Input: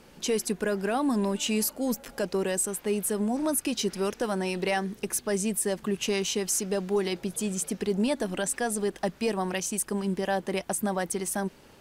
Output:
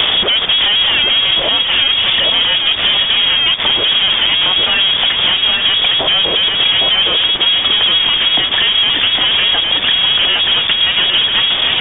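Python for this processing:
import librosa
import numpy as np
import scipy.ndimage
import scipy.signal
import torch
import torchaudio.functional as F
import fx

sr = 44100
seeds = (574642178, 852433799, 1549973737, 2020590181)

p1 = 10.0 ** (-32.5 / 20.0) * np.tanh(x / 10.0 ** (-32.5 / 20.0))
p2 = fx.peak_eq(p1, sr, hz=170.0, db=11.5, octaves=0.33)
p3 = fx.fuzz(p2, sr, gain_db=60.0, gate_db=-56.0)
p4 = p2 + (p3 * librosa.db_to_amplitude(0.0))
p5 = fx.freq_invert(p4, sr, carrier_hz=3500)
p6 = fx.transient(p5, sr, attack_db=-1, sustain_db=-6, at=(1.2, 2.43), fade=0.02)
p7 = p6 + fx.echo_single(p6, sr, ms=809, db=-4.0, dry=0)
p8 = fx.band_squash(p7, sr, depth_pct=100)
y = p8 * librosa.db_to_amplitude(-1.0)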